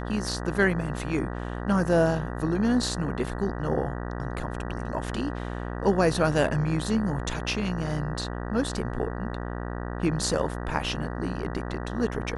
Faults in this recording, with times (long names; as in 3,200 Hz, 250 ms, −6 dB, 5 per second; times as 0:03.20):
mains buzz 60 Hz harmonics 32 −33 dBFS